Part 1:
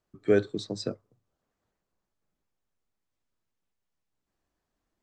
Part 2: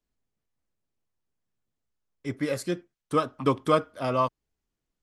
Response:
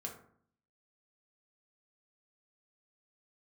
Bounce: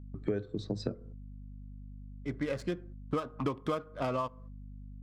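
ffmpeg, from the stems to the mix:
-filter_complex "[0:a]aemphasis=mode=reproduction:type=bsi,volume=0.5dB,asplit=3[link_01][link_02][link_03];[link_02]volume=-16dB[link_04];[1:a]adynamicsmooth=sensitivity=7.5:basefreq=1800,volume=2dB,asplit=2[link_05][link_06];[link_06]volume=-20dB[link_07];[link_03]apad=whole_len=221703[link_08];[link_05][link_08]sidechaincompress=threshold=-39dB:ratio=8:attack=7:release=1410[link_09];[2:a]atrim=start_sample=2205[link_10];[link_04][link_07]amix=inputs=2:normalize=0[link_11];[link_11][link_10]afir=irnorm=-1:irlink=0[link_12];[link_01][link_09][link_12]amix=inputs=3:normalize=0,agate=range=-18dB:threshold=-48dB:ratio=16:detection=peak,aeval=exprs='val(0)+0.00562*(sin(2*PI*50*n/s)+sin(2*PI*2*50*n/s)/2+sin(2*PI*3*50*n/s)/3+sin(2*PI*4*50*n/s)/4+sin(2*PI*5*50*n/s)/5)':channel_layout=same,acompressor=threshold=-29dB:ratio=12"

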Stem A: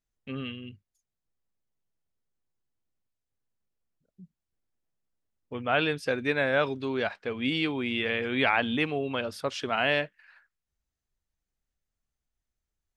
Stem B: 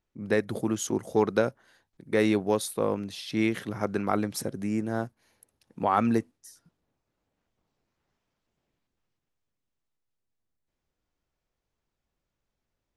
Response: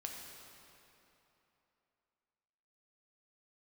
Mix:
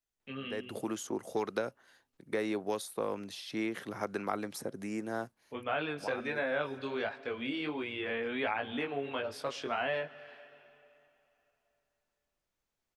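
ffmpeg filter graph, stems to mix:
-filter_complex "[0:a]flanger=delay=18.5:depth=3.3:speed=1.4,volume=0dB,asplit=3[link_01][link_02][link_03];[link_02]volume=-13dB[link_04];[1:a]adelay=200,volume=-1.5dB[link_05];[link_03]apad=whole_len=580512[link_06];[link_05][link_06]sidechaincompress=threshold=-48dB:ratio=5:attack=16:release=229[link_07];[2:a]atrim=start_sample=2205[link_08];[link_04][link_08]afir=irnorm=-1:irlink=0[link_09];[link_01][link_07][link_09]amix=inputs=3:normalize=0,lowshelf=frequency=260:gain=-9.5,acrossover=split=220|1600[link_10][link_11][link_12];[link_10]acompressor=threshold=-48dB:ratio=4[link_13];[link_11]acompressor=threshold=-31dB:ratio=4[link_14];[link_12]acompressor=threshold=-43dB:ratio=4[link_15];[link_13][link_14][link_15]amix=inputs=3:normalize=0"

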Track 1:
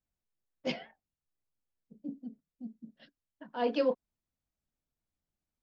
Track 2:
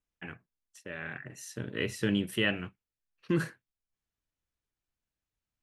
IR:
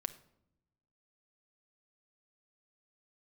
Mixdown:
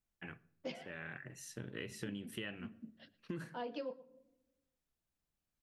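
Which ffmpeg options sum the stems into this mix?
-filter_complex "[0:a]volume=-4.5dB,asplit=3[link_01][link_02][link_03];[link_02]volume=-6dB[link_04];[link_03]volume=-17.5dB[link_05];[1:a]volume=-9.5dB,asplit=2[link_06][link_07];[link_07]volume=-3.5dB[link_08];[2:a]atrim=start_sample=2205[link_09];[link_04][link_08]amix=inputs=2:normalize=0[link_10];[link_10][link_09]afir=irnorm=-1:irlink=0[link_11];[link_05]aecho=0:1:114:1[link_12];[link_01][link_06][link_11][link_12]amix=inputs=4:normalize=0,acompressor=threshold=-40dB:ratio=6"

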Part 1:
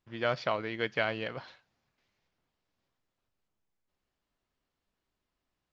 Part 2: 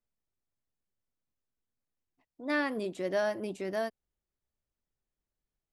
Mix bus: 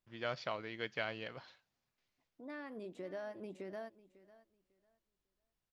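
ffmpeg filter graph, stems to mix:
ffmpeg -i stem1.wav -i stem2.wav -filter_complex "[0:a]highshelf=frequency=4000:gain=7,volume=-9.5dB,asplit=2[link_01][link_02];[1:a]highshelf=frequency=4300:gain=-11,acompressor=threshold=-42dB:ratio=3,volume=-3dB,asplit=2[link_03][link_04];[link_04]volume=-18.5dB[link_05];[link_02]apad=whole_len=252278[link_06];[link_03][link_06]sidechaincompress=threshold=-53dB:ratio=8:attack=41:release=1260[link_07];[link_05]aecho=0:1:549|1098|1647:1|0.2|0.04[link_08];[link_01][link_07][link_08]amix=inputs=3:normalize=0" out.wav

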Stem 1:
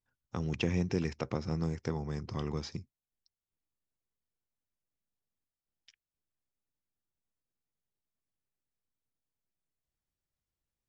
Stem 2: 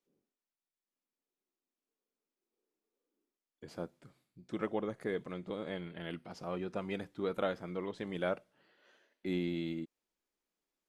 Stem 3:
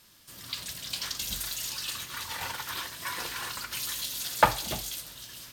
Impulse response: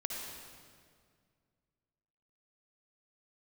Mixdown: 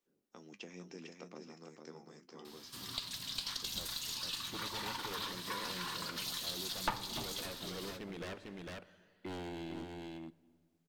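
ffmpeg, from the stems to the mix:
-filter_complex "[0:a]highpass=frequency=220:width=0.5412,highpass=frequency=220:width=1.3066,highshelf=frequency=5800:gain=11.5,flanger=delay=7.6:depth=6.5:regen=54:speed=0.31:shape=triangular,volume=-11dB,asplit=2[link_01][link_02];[link_02]volume=-5.5dB[link_03];[1:a]aeval=exprs='0.02*(abs(mod(val(0)/0.02+3,4)-2)-1)':channel_layout=same,volume=-1.5dB,asplit=3[link_04][link_05][link_06];[link_05]volume=-13dB[link_07];[link_06]volume=-3.5dB[link_08];[2:a]equalizer=frequency=125:width_type=o:width=1:gain=4,equalizer=frequency=250:width_type=o:width=1:gain=10,equalizer=frequency=500:width_type=o:width=1:gain=-5,equalizer=frequency=1000:width_type=o:width=1:gain=9,equalizer=frequency=4000:width_type=o:width=1:gain=10,aeval=exprs='(tanh(3.16*val(0)+0.65)-tanh(0.65))/3.16':channel_layout=same,adelay=2450,volume=-1.5dB,asplit=2[link_09][link_10];[link_10]volume=-18.5dB[link_11];[3:a]atrim=start_sample=2205[link_12];[link_07][link_11]amix=inputs=2:normalize=0[link_13];[link_13][link_12]afir=irnorm=-1:irlink=0[link_14];[link_03][link_08]amix=inputs=2:normalize=0,aecho=0:1:451:1[link_15];[link_01][link_04][link_09][link_14][link_15]amix=inputs=5:normalize=0,acompressor=threshold=-44dB:ratio=2"

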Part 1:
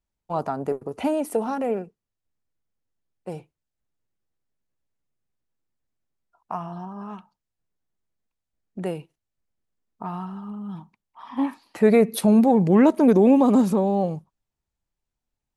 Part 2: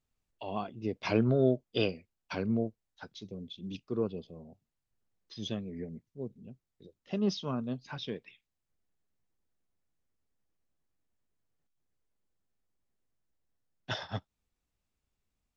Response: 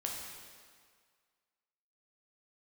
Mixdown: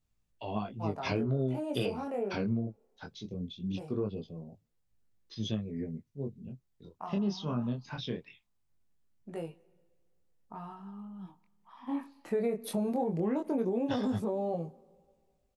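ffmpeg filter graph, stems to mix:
-filter_complex "[0:a]adynamicequalizer=threshold=0.0447:dfrequency=450:dqfactor=0.85:tfrequency=450:tqfactor=0.85:attack=5:release=100:ratio=0.375:range=2.5:mode=boostabove:tftype=bell,adelay=500,volume=-9dB,asplit=2[link_01][link_02];[link_02]volume=-21dB[link_03];[1:a]bass=frequency=250:gain=6,treble=frequency=4000:gain=1,volume=3dB[link_04];[2:a]atrim=start_sample=2205[link_05];[link_03][link_05]afir=irnorm=-1:irlink=0[link_06];[link_01][link_04][link_06]amix=inputs=3:normalize=0,flanger=delay=17.5:depth=7.8:speed=0.2,acompressor=threshold=-28dB:ratio=5"

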